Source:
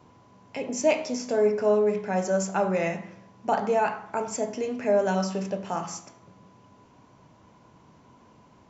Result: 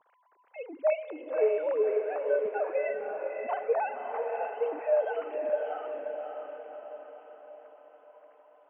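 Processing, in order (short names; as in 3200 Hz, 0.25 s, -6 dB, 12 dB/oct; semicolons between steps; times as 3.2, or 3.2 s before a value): sine-wave speech; low shelf 210 Hz -5.5 dB; diffused feedback echo 0.572 s, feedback 53%, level -4 dB; gain -5 dB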